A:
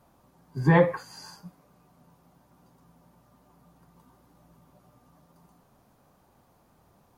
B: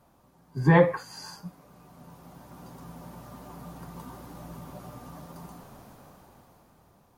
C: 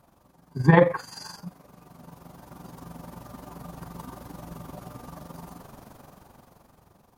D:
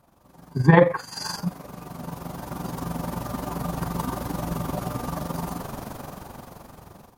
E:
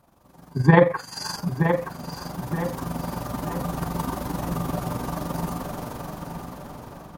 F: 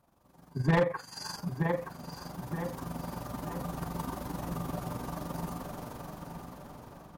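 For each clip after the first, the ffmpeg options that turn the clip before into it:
-af "dynaudnorm=f=280:g=11:m=16dB"
-af "tremolo=f=23:d=0.667,volume=5dB"
-af "dynaudnorm=f=220:g=3:m=13dB,volume=-1dB"
-filter_complex "[0:a]asplit=2[a][b];[b]adelay=923,lowpass=f=4.8k:p=1,volume=-7dB,asplit=2[c][d];[d]adelay=923,lowpass=f=4.8k:p=1,volume=0.42,asplit=2[e][f];[f]adelay=923,lowpass=f=4.8k:p=1,volume=0.42,asplit=2[g][h];[h]adelay=923,lowpass=f=4.8k:p=1,volume=0.42,asplit=2[i][j];[j]adelay=923,lowpass=f=4.8k:p=1,volume=0.42[k];[a][c][e][g][i][k]amix=inputs=6:normalize=0"
-af "asoftclip=type=hard:threshold=-11dB,volume=-8.5dB"

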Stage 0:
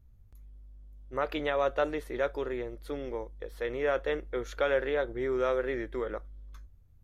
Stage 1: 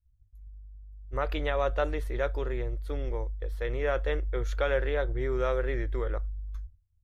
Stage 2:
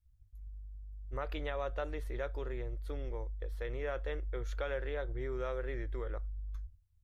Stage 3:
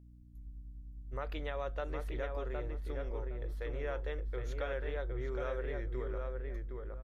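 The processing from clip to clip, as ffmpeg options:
-af "agate=range=-33dB:threshold=-42dB:ratio=3:detection=peak,lowshelf=f=130:t=q:w=1.5:g=13"
-af "acompressor=threshold=-41dB:ratio=2"
-filter_complex "[0:a]asplit=2[a][b];[b]adelay=764,lowpass=f=2k:p=1,volume=-3.5dB,asplit=2[c][d];[d]adelay=764,lowpass=f=2k:p=1,volume=0.24,asplit=2[e][f];[f]adelay=764,lowpass=f=2k:p=1,volume=0.24[g];[a][c][e][g]amix=inputs=4:normalize=0,aeval=exprs='val(0)+0.002*(sin(2*PI*60*n/s)+sin(2*PI*2*60*n/s)/2+sin(2*PI*3*60*n/s)/3+sin(2*PI*4*60*n/s)/4+sin(2*PI*5*60*n/s)/5)':c=same,volume=-1.5dB"

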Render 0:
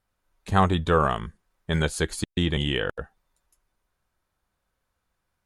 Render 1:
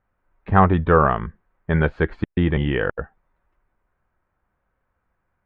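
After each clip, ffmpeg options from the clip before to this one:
-af "lowpass=f=2.1k:w=0.5412,lowpass=f=2.1k:w=1.3066,volume=5.5dB"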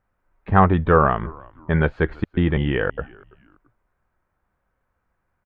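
-filter_complex "[0:a]asplit=3[a][b][c];[b]adelay=334,afreqshift=-92,volume=-24dB[d];[c]adelay=668,afreqshift=-184,volume=-33.1dB[e];[a][d][e]amix=inputs=3:normalize=0"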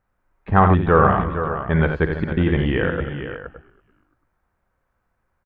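-af "aecho=1:1:55|87|311|463|567:0.282|0.447|0.133|0.316|0.211"

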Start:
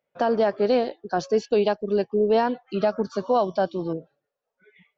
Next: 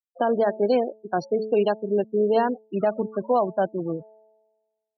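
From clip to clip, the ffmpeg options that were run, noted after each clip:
-af "afftfilt=real='re*gte(hypot(re,im),0.0447)':imag='im*gte(hypot(re,im),0.0447)':win_size=1024:overlap=0.75,bandreject=f=217.4:t=h:w=4,bandreject=f=434.8:t=h:w=4,bandreject=f=652.2:t=h:w=4,bandreject=f=869.6:t=h:w=4,areverse,acompressor=mode=upward:threshold=-38dB:ratio=2.5,areverse"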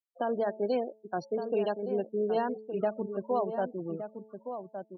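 -filter_complex "[0:a]asplit=2[a][b];[b]adelay=1166,volume=-8dB,highshelf=f=4k:g=-26.2[c];[a][c]amix=inputs=2:normalize=0,volume=-8.5dB"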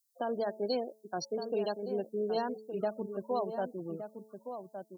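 -af "aexciter=amount=8.2:drive=4.9:freq=3.9k,volume=-3.5dB"

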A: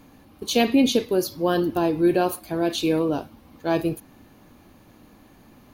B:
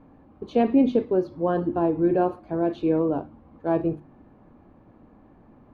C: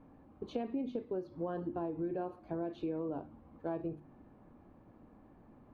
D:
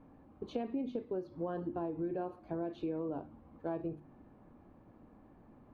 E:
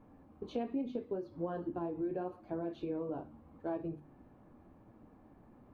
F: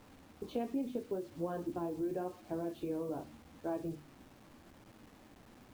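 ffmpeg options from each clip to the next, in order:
-af "lowpass=1.1k,bandreject=f=50:t=h:w=6,bandreject=f=100:t=h:w=6,bandreject=f=150:t=h:w=6,bandreject=f=200:t=h:w=6,bandreject=f=250:t=h:w=6,bandreject=f=300:t=h:w=6,bandreject=f=350:t=h:w=6"
-af "acompressor=threshold=-28dB:ratio=6,volume=-6.5dB"
-af anull
-af "flanger=delay=8.5:depth=8.7:regen=-40:speed=0.81:shape=triangular,volume=3.5dB"
-af "acrusher=bits=9:mix=0:aa=0.000001"

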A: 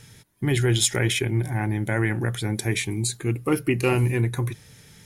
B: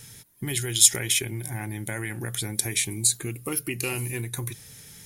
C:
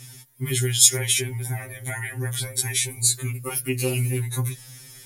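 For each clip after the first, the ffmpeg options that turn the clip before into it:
-filter_complex "[0:a]aemphasis=mode=production:type=50kf,acrossover=split=2500[a][b];[a]acompressor=threshold=-28dB:ratio=6[c];[c][b]amix=inputs=2:normalize=0,volume=-1.5dB"
-af "afftfilt=real='re*2.45*eq(mod(b,6),0)':imag='im*2.45*eq(mod(b,6),0)':win_size=2048:overlap=0.75,volume=4.5dB"

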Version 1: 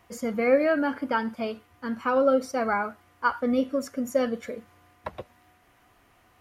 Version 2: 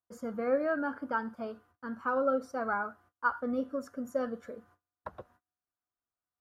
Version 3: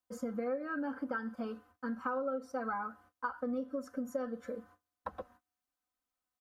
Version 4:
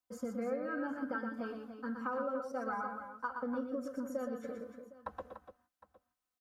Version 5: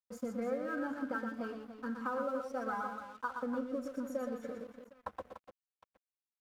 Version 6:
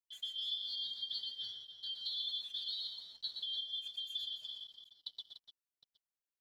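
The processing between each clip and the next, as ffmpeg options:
-af "agate=range=-31dB:threshold=-53dB:ratio=16:detection=peak,highshelf=f=1.8k:t=q:w=3:g=-6,volume=-8.5dB"
-af "aecho=1:1:3.9:0.91,acompressor=threshold=-34dB:ratio=5"
-af "aecho=1:1:120|292|760:0.531|0.335|0.112,volume=-2dB"
-af "aeval=exprs='sgn(val(0))*max(abs(val(0))-0.00106,0)':c=same,volume=1dB"
-af "afftfilt=real='real(if(lt(b,272),68*(eq(floor(b/68),0)*2+eq(floor(b/68),1)*3+eq(floor(b/68),2)*0+eq(floor(b/68),3)*1)+mod(b,68),b),0)':imag='imag(if(lt(b,272),68*(eq(floor(b/68),0)*2+eq(floor(b/68),1)*3+eq(floor(b/68),2)*0+eq(floor(b/68),3)*1)+mod(b,68),b),0)':win_size=2048:overlap=0.75,volume=-4dB"

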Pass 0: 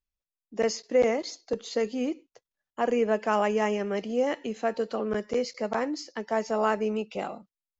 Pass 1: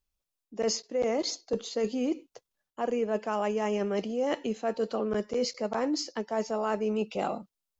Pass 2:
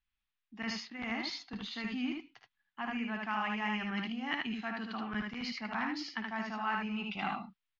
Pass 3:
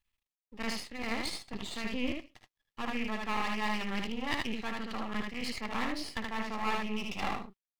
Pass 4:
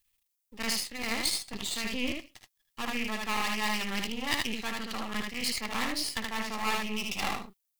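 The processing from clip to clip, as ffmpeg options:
-af "equalizer=f=1.9k:t=o:w=0.72:g=-5,areverse,acompressor=threshold=-32dB:ratio=6,areverse,volume=6dB"
-filter_complex "[0:a]firequalizer=gain_entry='entry(240,0);entry(510,-27);entry(760,-1);entry(1800,10);entry(3500,5);entry(8200,-27)':delay=0.05:min_phase=1,asplit=2[a][b];[b]aecho=0:1:55|76:0.266|0.708[c];[a][c]amix=inputs=2:normalize=0,volume=-5dB"
-af "aeval=exprs='max(val(0),0)':c=same,bandreject=f=1.5k:w=7.3,volume=6dB"
-af "crystalizer=i=3.5:c=0"

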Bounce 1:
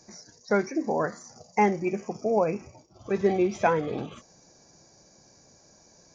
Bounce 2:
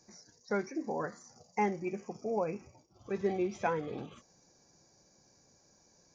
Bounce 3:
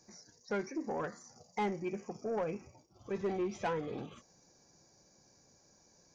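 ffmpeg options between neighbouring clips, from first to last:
-af "bandreject=f=640:w=12,volume=-8.5dB"
-af "asoftclip=type=tanh:threshold=-28dB"

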